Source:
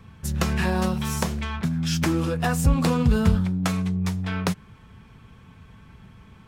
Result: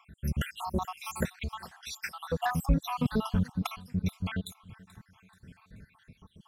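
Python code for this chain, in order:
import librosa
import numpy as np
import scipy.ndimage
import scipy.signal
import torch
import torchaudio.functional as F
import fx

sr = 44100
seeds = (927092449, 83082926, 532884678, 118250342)

p1 = fx.spec_dropout(x, sr, seeds[0], share_pct=73)
p2 = 10.0 ** (-23.0 / 20.0) * np.tanh(p1 / 10.0 ** (-23.0 / 20.0))
p3 = p1 + (p2 * 10.0 ** (-6.0 / 20.0))
p4 = fx.peak_eq(p3, sr, hz=11000.0, db=6.0, octaves=0.26)
p5 = fx.echo_feedback(p4, sr, ms=432, feedback_pct=44, wet_db=-22)
p6 = fx.dynamic_eq(p5, sr, hz=7800.0, q=0.93, threshold_db=-50.0, ratio=4.0, max_db=-7)
y = p6 * 10.0 ** (-4.5 / 20.0)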